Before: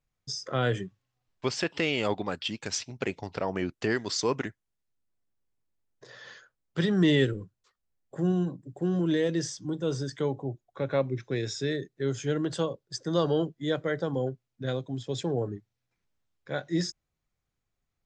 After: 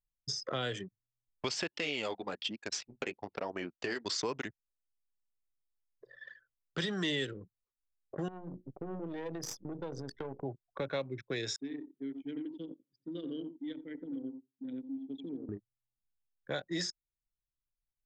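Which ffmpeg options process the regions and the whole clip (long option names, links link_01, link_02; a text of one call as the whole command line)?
ffmpeg -i in.wav -filter_complex "[0:a]asettb=1/sr,asplit=3[link_01][link_02][link_03];[link_01]atrim=end=1.714[link_04];[link_02]atrim=start=1.71:end=4.06,asetpts=PTS-STARTPTS,afade=type=in:duration=0.004:curve=qsin,afade=type=out:start_time=2.346:duration=0.004:curve=qsin,flanger=delay=2.9:depth=9.6:regen=-45:speed=1.1:shape=sinusoidal,lowshelf=frequency=170:gain=-9[link_05];[link_03]atrim=start=4.056[link_06];[link_04][link_05]acrossfade=duration=0.004:curve1=hsin:curve2=qsin[link_07];[link_07][link_06]acrossfade=duration=0.004:curve1=qsin:curve2=hsin,asettb=1/sr,asplit=3[link_08][link_09][link_10];[link_08]atrim=end=8.284[link_11];[link_09]atrim=start=8.28:end=10.43,asetpts=PTS-STARTPTS,afade=type=in:duration=0.004:curve=qsin,afade=type=out:start_time=2.146:duration=0.004:curve=qsin,aeval=exprs='if(lt(val(0),0),0.251*val(0),val(0))':channel_layout=same,bandreject=frequency=60:width_type=h:width=6,bandreject=frequency=120:width_type=h:width=6,bandreject=frequency=180:width_type=h:width=6,bandreject=frequency=240:width_type=h:width=6,bandreject=frequency=300:width_type=h:width=6,bandreject=frequency=360:width_type=h:width=6,bandreject=frequency=420:width_type=h:width=6,bandreject=frequency=480:width_type=h:width=6,bandreject=frequency=540:width_type=h:width=6,acompressor=threshold=-34dB:ratio=10:attack=3.2:release=140:knee=1:detection=peak[link_12];[link_10]atrim=start=10.426[link_13];[link_11][link_12]acrossfade=duration=0.004:curve1=hsin:curve2=qsin[link_14];[link_14][link_13]acrossfade=duration=0.004:curve1=qsin:curve2=hsin,asettb=1/sr,asplit=3[link_15][link_16][link_17];[link_15]atrim=end=11.564[link_18];[link_16]atrim=start=11.56:end=15.49,asetpts=PTS-STARTPTS,afade=type=in:duration=0.004:curve=qsin,afade=type=out:start_time=3.926:duration=0.004:curve=qsin,asplit=3[link_19][link_20][link_21];[link_19]bandpass=frequency=270:width_type=q:width=8,volume=0dB[link_22];[link_20]bandpass=frequency=2290:width_type=q:width=8,volume=-6dB[link_23];[link_21]bandpass=frequency=3010:width_type=q:width=8,volume=-9dB[link_24];[link_22][link_23][link_24]amix=inputs=3:normalize=0,aecho=1:1:86|172|258:0.447|0.0938|0.0197,atrim=end_sample=173313[link_25];[link_17]atrim=start=15.486[link_26];[link_18][link_25]acrossfade=duration=0.004:curve1=hsin:curve2=qsin[link_27];[link_27][link_26]acrossfade=duration=0.004:curve1=qsin:curve2=hsin,anlmdn=0.251,lowshelf=frequency=120:gain=-9.5,acrossover=split=640|2800[link_28][link_29][link_30];[link_28]acompressor=threshold=-42dB:ratio=4[link_31];[link_29]acompressor=threshold=-46dB:ratio=4[link_32];[link_30]acompressor=threshold=-41dB:ratio=4[link_33];[link_31][link_32][link_33]amix=inputs=3:normalize=0,volume=4dB" out.wav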